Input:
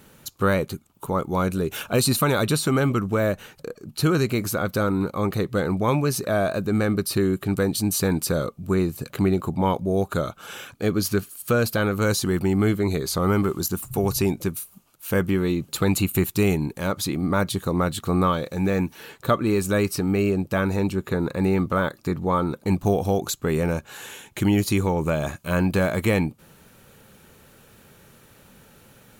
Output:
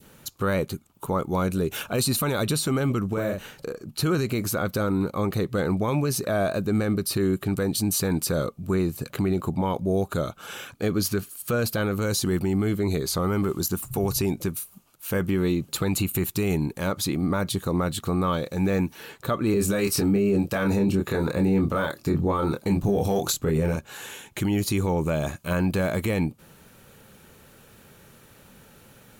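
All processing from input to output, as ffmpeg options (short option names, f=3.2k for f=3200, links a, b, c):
-filter_complex "[0:a]asettb=1/sr,asplit=3[a][b][c];[a]atrim=end=3.134[d];[b]atrim=start=3.13:end=3.83,asetpts=PTS-STARTPTS,afade=t=in:d=0.004:c=qsin,afade=t=out:st=0.696:d=0.004:c=qsin,acompressor=threshold=-25dB:ratio=2.5:attack=3.2:release=140:knee=1:detection=peak,asplit=2[e][f];[f]adelay=43,volume=-3dB[g];[e][g]amix=inputs=2:normalize=0,atrim=end_sample=30870[h];[c]atrim=start=3.826[i];[d][h]acrossfade=d=0.004:c1=hsin:c2=qsin[j];[j][i]acrossfade=d=0.004:c1=qsin:c2=hsin,asettb=1/sr,asplit=3[k][l][m];[k]atrim=end=19.544[n];[l]atrim=start=19.54:end=23.76,asetpts=PTS-STARTPTS,afade=t=in:d=0.004:c=qsin,afade=t=out:st=4.216:d=0.004:c=qsin,acontrast=50,asplit=2[o][p];[p]adelay=25,volume=-5dB[q];[o][q]amix=inputs=2:normalize=0,atrim=end_sample=186102,acrossover=split=530[r][s];[r]aeval=exprs='val(0)*(1-0.5/2+0.5/2*cos(2*PI*1.5*n/s))':c=same[t];[s]aeval=exprs='val(0)*(1-0.5/2-0.5/2*cos(2*PI*1.5*n/s))':c=same[u];[t][u]amix=inputs=2:normalize=0[v];[m]atrim=start=23.756[w];[n][v]acrossfade=d=0.004:c1=hsin:c2=qsin[x];[x][w]acrossfade=d=0.004:c1=qsin:c2=hsin,adynamicequalizer=threshold=0.02:dfrequency=1300:dqfactor=0.8:tfrequency=1300:tqfactor=0.8:attack=5:release=100:ratio=0.375:range=2:mode=cutabove:tftype=bell,alimiter=limit=-15dB:level=0:latency=1:release=30"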